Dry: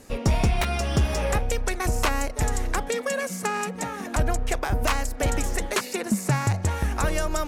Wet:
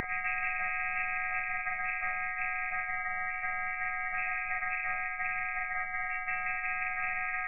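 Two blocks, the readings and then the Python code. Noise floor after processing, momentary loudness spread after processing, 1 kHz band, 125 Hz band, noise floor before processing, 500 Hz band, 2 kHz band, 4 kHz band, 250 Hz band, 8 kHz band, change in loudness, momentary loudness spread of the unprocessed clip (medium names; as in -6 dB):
-37 dBFS, 2 LU, -5.5 dB, under -30 dB, -36 dBFS, -22.0 dB, +2.0 dB, under -30 dB, under -30 dB, under -40 dB, -6.5 dB, 4 LU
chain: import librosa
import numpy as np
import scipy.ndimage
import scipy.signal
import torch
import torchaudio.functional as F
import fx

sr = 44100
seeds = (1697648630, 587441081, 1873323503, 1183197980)

y = fx.freq_snap(x, sr, grid_st=6)
y = scipy.signal.sosfilt(scipy.signal.butter(2, 620.0, 'highpass', fs=sr, output='sos'), y)
y = fx.peak_eq(y, sr, hz=1200.0, db=-8.0, octaves=2.8)
y = y + 0.72 * np.pad(y, (int(2.0 * sr / 1000.0), 0))[:len(y)]
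y = fx.rider(y, sr, range_db=10, speed_s=2.0)
y = fx.room_early_taps(y, sr, ms=(28, 41), db=(-4.5, -5.5))
y = fx.freq_invert(y, sr, carrier_hz=2500)
y = fx.spectral_comp(y, sr, ratio=10.0)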